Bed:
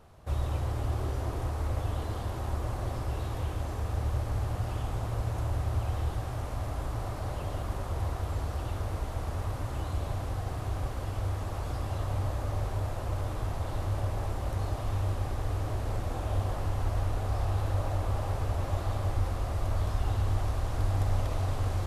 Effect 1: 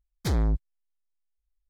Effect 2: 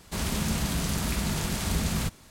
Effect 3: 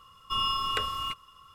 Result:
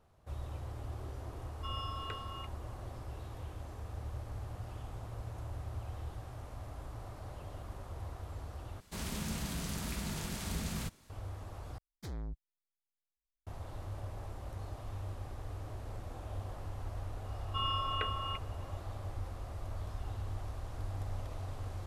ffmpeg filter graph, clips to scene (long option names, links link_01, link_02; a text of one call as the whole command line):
ffmpeg -i bed.wav -i cue0.wav -i cue1.wav -i cue2.wav -filter_complex "[3:a]asplit=2[link_01][link_02];[0:a]volume=-11.5dB[link_03];[link_01]lowpass=frequency=2200:poles=1[link_04];[link_02]lowpass=frequency=3000:width=0.5412,lowpass=frequency=3000:width=1.3066[link_05];[link_03]asplit=3[link_06][link_07][link_08];[link_06]atrim=end=8.804[link_09];[2:a]atrim=end=2.3,asetpts=PTS-STARTPTS,volume=-10dB[link_10];[link_07]atrim=start=11.096:end=11.784[link_11];[1:a]atrim=end=1.69,asetpts=PTS-STARTPTS,volume=-17dB[link_12];[link_08]atrim=start=13.466[link_13];[link_04]atrim=end=1.54,asetpts=PTS-STARTPTS,volume=-11.5dB,afade=type=in:duration=0.004:curve=hsin,afade=type=out:start_time=1.536:duration=0.004:curve=hsin,adelay=1330[link_14];[link_05]atrim=end=1.54,asetpts=PTS-STARTPTS,volume=-5.5dB,afade=type=in:duration=0.004:curve=hsin,afade=type=out:start_time=1.536:duration=0.004:curve=hsin,adelay=17240[link_15];[link_09][link_10]acrossfade=duration=0.004:curve1=hsin:curve2=hsin[link_16];[link_16][link_11]acrossfade=duration=0.004:curve1=hsin:curve2=hsin[link_17];[link_17][link_12]acrossfade=duration=0.004:curve1=hsin:curve2=hsin[link_18];[link_18][link_13]acrossfade=duration=0.004:curve1=hsin:curve2=hsin[link_19];[link_19][link_14][link_15]amix=inputs=3:normalize=0" out.wav